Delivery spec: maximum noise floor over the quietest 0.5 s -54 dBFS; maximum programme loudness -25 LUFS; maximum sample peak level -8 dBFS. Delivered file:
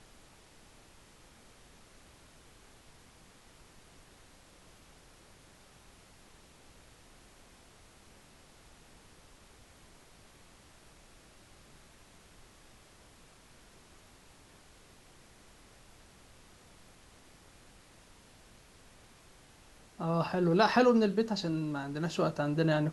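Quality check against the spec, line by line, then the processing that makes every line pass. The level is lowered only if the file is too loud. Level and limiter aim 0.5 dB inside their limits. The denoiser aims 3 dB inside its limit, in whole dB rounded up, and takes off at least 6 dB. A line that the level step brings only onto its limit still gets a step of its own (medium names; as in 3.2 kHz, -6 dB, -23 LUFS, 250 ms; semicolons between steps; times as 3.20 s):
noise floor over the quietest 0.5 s -58 dBFS: pass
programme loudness -29.5 LUFS: pass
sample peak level -13.0 dBFS: pass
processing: none needed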